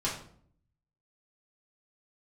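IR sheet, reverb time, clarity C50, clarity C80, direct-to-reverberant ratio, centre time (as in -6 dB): 0.55 s, 6.0 dB, 10.0 dB, -7.5 dB, 31 ms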